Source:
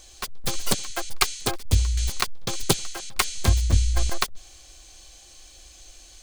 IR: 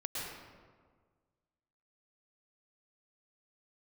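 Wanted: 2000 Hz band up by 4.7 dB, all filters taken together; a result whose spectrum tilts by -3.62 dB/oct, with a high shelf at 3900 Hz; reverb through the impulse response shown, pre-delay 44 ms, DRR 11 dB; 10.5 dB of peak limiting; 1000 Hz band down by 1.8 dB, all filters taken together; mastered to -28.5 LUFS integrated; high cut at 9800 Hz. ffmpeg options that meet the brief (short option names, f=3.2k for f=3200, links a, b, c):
-filter_complex "[0:a]lowpass=9.8k,equalizer=f=1k:t=o:g=-4.5,equalizer=f=2k:t=o:g=8.5,highshelf=f=3.9k:g=-6,alimiter=limit=-14dB:level=0:latency=1,asplit=2[a][b];[1:a]atrim=start_sample=2205,adelay=44[c];[b][c]afir=irnorm=-1:irlink=0,volume=-13.5dB[d];[a][d]amix=inputs=2:normalize=0,volume=1dB"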